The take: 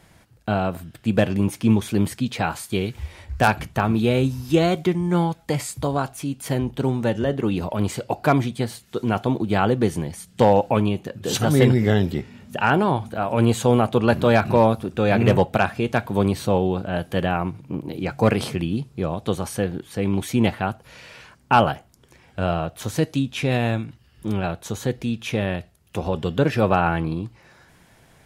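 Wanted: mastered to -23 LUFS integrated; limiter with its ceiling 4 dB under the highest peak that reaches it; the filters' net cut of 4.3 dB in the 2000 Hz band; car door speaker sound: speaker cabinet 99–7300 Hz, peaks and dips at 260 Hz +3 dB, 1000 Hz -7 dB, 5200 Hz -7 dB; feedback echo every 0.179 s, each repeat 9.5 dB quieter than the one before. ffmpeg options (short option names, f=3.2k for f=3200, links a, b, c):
-af "equalizer=f=2k:t=o:g=-5.5,alimiter=limit=-8.5dB:level=0:latency=1,highpass=99,equalizer=f=260:t=q:w=4:g=3,equalizer=f=1k:t=q:w=4:g=-7,equalizer=f=5.2k:t=q:w=4:g=-7,lowpass=f=7.3k:w=0.5412,lowpass=f=7.3k:w=1.3066,aecho=1:1:179|358|537|716:0.335|0.111|0.0365|0.012"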